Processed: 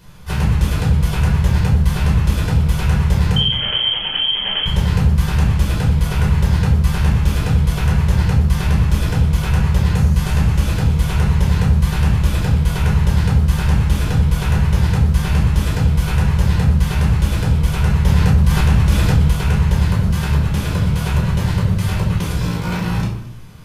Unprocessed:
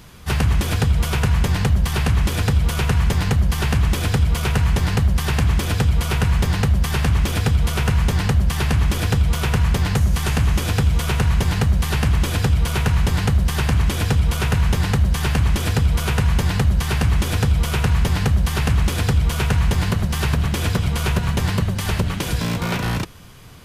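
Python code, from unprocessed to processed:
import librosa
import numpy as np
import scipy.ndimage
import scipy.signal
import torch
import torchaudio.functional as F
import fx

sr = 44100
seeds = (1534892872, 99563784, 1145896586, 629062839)

p1 = fx.freq_invert(x, sr, carrier_hz=3200, at=(3.36, 4.66))
p2 = p1 + fx.echo_feedback(p1, sr, ms=221, feedback_pct=16, wet_db=-20.5, dry=0)
p3 = fx.room_shoebox(p2, sr, seeds[0], volume_m3=760.0, walls='furnished', distance_m=5.0)
p4 = fx.env_flatten(p3, sr, amount_pct=50, at=(18.05, 19.31))
y = F.gain(torch.from_numpy(p4), -8.0).numpy()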